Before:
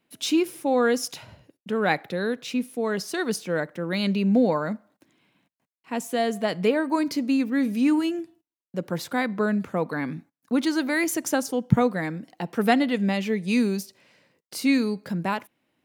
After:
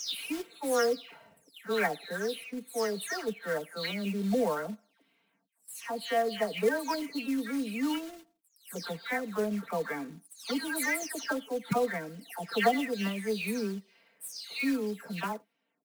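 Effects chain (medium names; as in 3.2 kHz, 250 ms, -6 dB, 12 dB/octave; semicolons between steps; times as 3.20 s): delay that grows with frequency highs early, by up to 321 ms; high-pass 410 Hz 6 dB/octave; band-stop 7.1 kHz, Q 7.2; short-mantissa float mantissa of 2-bit; comb 4.4 ms, depth 76%; trim -5.5 dB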